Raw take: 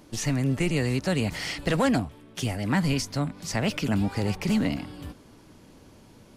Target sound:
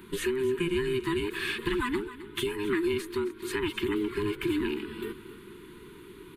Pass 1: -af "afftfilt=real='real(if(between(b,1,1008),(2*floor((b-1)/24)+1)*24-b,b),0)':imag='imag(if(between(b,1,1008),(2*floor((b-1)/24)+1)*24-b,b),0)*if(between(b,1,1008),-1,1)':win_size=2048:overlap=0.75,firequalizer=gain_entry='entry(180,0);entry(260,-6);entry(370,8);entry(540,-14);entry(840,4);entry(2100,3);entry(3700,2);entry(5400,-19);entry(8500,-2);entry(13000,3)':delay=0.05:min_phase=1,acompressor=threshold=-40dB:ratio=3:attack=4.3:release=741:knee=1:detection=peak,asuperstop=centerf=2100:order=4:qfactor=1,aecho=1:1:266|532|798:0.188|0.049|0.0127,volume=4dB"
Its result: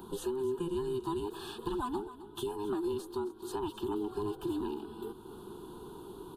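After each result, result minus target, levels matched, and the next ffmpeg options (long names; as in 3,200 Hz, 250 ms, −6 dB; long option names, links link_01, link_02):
2,000 Hz band −14.0 dB; downward compressor: peak gain reduction +6.5 dB
-af "afftfilt=real='real(if(between(b,1,1008),(2*floor((b-1)/24)+1)*24-b,b),0)':imag='imag(if(between(b,1,1008),(2*floor((b-1)/24)+1)*24-b,b),0)*if(between(b,1,1008),-1,1)':win_size=2048:overlap=0.75,firequalizer=gain_entry='entry(180,0);entry(260,-6);entry(370,8);entry(540,-14);entry(840,4);entry(2100,3);entry(3700,2);entry(5400,-19);entry(8500,-2);entry(13000,3)':delay=0.05:min_phase=1,acompressor=threshold=-40dB:ratio=3:attack=4.3:release=741:knee=1:detection=peak,asuperstop=centerf=690:order=4:qfactor=1,aecho=1:1:266|532|798:0.188|0.049|0.0127,volume=4dB"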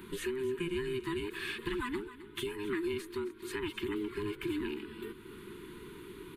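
downward compressor: peak gain reduction +6.5 dB
-af "afftfilt=real='real(if(between(b,1,1008),(2*floor((b-1)/24)+1)*24-b,b),0)':imag='imag(if(between(b,1,1008),(2*floor((b-1)/24)+1)*24-b,b),0)*if(between(b,1,1008),-1,1)':win_size=2048:overlap=0.75,firequalizer=gain_entry='entry(180,0);entry(260,-6);entry(370,8);entry(540,-14);entry(840,4);entry(2100,3);entry(3700,2);entry(5400,-19);entry(8500,-2);entry(13000,3)':delay=0.05:min_phase=1,acompressor=threshold=-30dB:ratio=3:attack=4.3:release=741:knee=1:detection=peak,asuperstop=centerf=690:order=4:qfactor=1,aecho=1:1:266|532|798:0.188|0.049|0.0127,volume=4dB"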